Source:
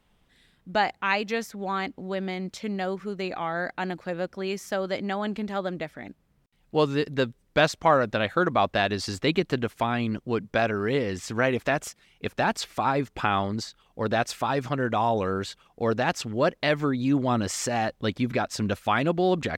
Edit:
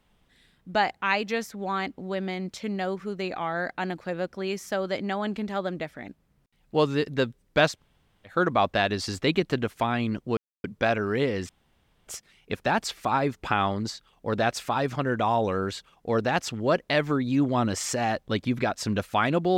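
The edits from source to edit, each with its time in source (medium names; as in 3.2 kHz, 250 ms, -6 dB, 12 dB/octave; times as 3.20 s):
7.75–8.32 s: room tone, crossfade 0.16 s
10.37 s: insert silence 0.27 s
11.22–11.80 s: room tone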